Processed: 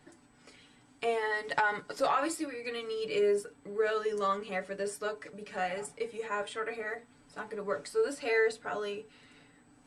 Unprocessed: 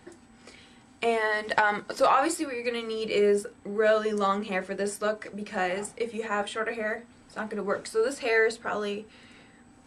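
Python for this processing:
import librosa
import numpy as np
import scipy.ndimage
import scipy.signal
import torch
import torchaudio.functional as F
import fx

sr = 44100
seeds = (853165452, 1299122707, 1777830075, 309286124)

y = x + 0.7 * np.pad(x, (int(6.9 * sr / 1000.0), 0))[:len(x)]
y = F.gain(torch.from_numpy(y), -7.5).numpy()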